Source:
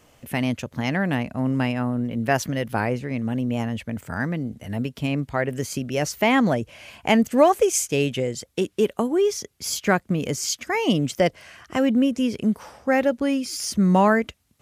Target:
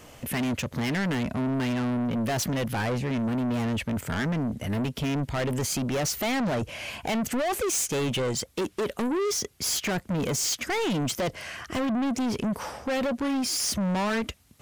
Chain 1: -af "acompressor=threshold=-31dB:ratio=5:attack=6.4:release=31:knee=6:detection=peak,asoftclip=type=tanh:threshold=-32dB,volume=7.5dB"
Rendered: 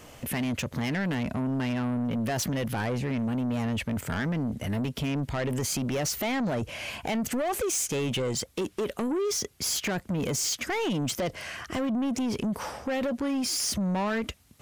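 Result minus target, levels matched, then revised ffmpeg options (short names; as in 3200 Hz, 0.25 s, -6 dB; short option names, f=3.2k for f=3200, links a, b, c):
compressor: peak gain reduction +7 dB
-af "acompressor=threshold=-22.5dB:ratio=5:attack=6.4:release=31:knee=6:detection=peak,asoftclip=type=tanh:threshold=-32dB,volume=7.5dB"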